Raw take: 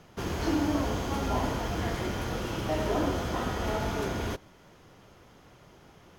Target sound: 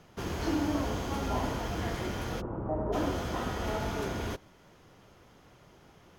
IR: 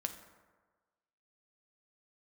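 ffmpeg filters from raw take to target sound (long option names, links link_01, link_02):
-filter_complex "[0:a]asplit=3[link_01][link_02][link_03];[link_01]afade=type=out:start_time=2.4:duration=0.02[link_04];[link_02]lowpass=frequency=1100:width=0.5412,lowpass=frequency=1100:width=1.3066,afade=type=in:start_time=2.4:duration=0.02,afade=type=out:start_time=2.92:duration=0.02[link_05];[link_03]afade=type=in:start_time=2.92:duration=0.02[link_06];[link_04][link_05][link_06]amix=inputs=3:normalize=0,volume=-2.5dB" -ar 48000 -c:a libmp3lame -b:a 320k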